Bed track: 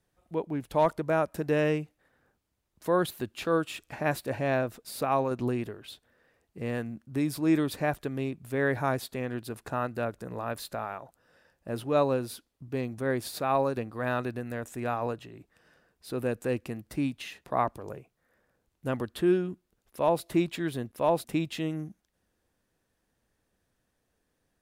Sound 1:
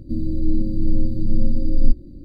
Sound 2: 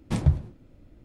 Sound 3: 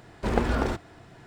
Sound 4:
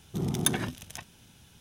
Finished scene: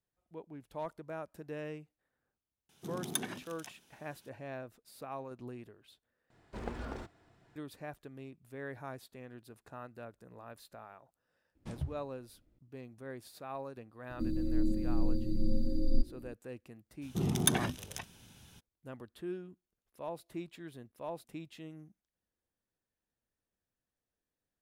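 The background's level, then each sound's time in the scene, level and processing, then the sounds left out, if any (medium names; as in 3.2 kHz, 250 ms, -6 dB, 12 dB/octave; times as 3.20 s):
bed track -16 dB
2.69 s: add 4 -8.5 dB + high-pass 200 Hz
6.30 s: replace with 3 -16 dB
11.55 s: add 2 -17.5 dB
14.10 s: add 1 -4.5 dB + tone controls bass -9 dB, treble +4 dB
17.01 s: add 4 -1.5 dB, fades 0.02 s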